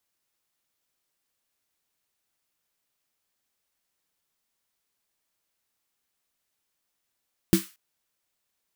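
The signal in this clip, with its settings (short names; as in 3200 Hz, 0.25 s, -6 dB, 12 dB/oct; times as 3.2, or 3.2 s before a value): snare drum length 0.23 s, tones 190 Hz, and 330 Hz, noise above 1200 Hz, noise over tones -11.5 dB, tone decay 0.15 s, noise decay 0.34 s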